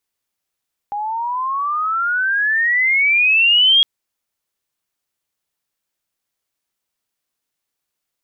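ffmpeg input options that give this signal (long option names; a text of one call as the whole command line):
ffmpeg -f lavfi -i "aevalsrc='pow(10,(-20.5+12*t/2.91)/20)*sin(2*PI*810*2.91/log(3300/810)*(exp(log(3300/810)*t/2.91)-1))':duration=2.91:sample_rate=44100" out.wav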